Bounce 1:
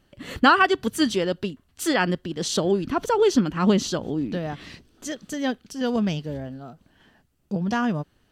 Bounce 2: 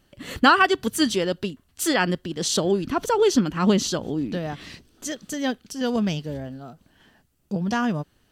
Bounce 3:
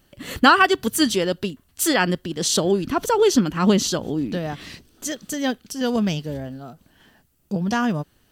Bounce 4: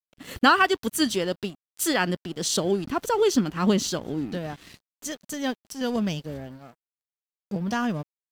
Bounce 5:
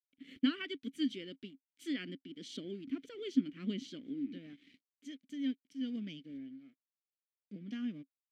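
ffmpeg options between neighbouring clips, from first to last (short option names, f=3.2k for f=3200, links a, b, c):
-af "highshelf=f=4.9k:g=6"
-af "highshelf=f=12k:g=9.5,volume=2dB"
-af "aeval=exprs='sgn(val(0))*max(abs(val(0))-0.00891,0)':c=same,volume=-4dB"
-filter_complex "[0:a]asplit=3[a][b][c];[a]bandpass=f=270:t=q:w=8,volume=0dB[d];[b]bandpass=f=2.29k:t=q:w=8,volume=-6dB[e];[c]bandpass=f=3.01k:t=q:w=8,volume=-9dB[f];[d][e][f]amix=inputs=3:normalize=0,volume=-3.5dB"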